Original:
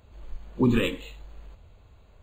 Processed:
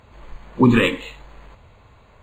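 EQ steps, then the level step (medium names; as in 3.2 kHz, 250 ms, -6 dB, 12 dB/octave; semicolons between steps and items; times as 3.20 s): graphic EQ 125/250/500/1000/2000/4000/8000 Hz +7/+6/+5/+11/+11/+4/+6 dB; -1.0 dB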